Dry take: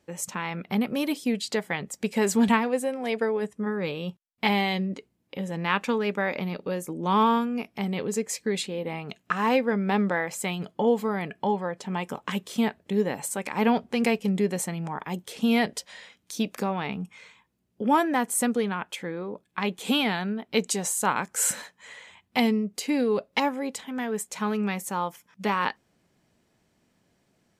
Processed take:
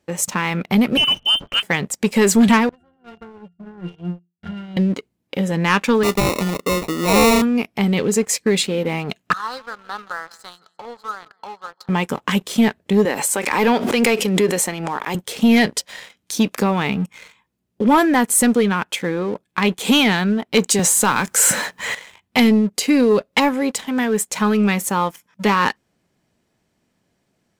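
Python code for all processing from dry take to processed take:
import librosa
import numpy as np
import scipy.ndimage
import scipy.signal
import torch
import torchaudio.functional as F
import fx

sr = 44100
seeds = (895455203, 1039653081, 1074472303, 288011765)

y = fx.chain(x, sr, fx.freq_invert(carrier_hz=3300),
    fx.transient(attack_db=-7, sustain_db=0), at=(0.97, 1.63))
y = fx.chain(y, sr, fx.lower_of_two(delay_ms=0.54),
    fx.octave_resonator(note='F', decay_s=0.28), at=(2.69, 4.77))
y = fx.chain(y, sr, fx.highpass(hz=180.0, slope=12),
    fx.sample_hold(seeds[0], rate_hz=1600.0, jitter_pct=0), at=(6.03, 7.42))
y = fx.chain(y, sr, fx.double_bandpass(hz=2400.0, octaves=1.7),
    fx.echo_feedback(ms=170, feedback_pct=43, wet_db=-17), at=(9.33, 11.89))
y = fx.chain(y, sr, fx.highpass(hz=310.0, slope=12),
    fx.pre_swell(db_per_s=52.0), at=(13.05, 15.15))
y = fx.chain(y, sr, fx.law_mismatch(coded='mu'),
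    fx.band_squash(depth_pct=40), at=(20.79, 21.95))
y = fx.dynamic_eq(y, sr, hz=720.0, q=1.8, threshold_db=-39.0, ratio=4.0, max_db=-5)
y = fx.leveller(y, sr, passes=2)
y = y * librosa.db_to_amplitude(4.0)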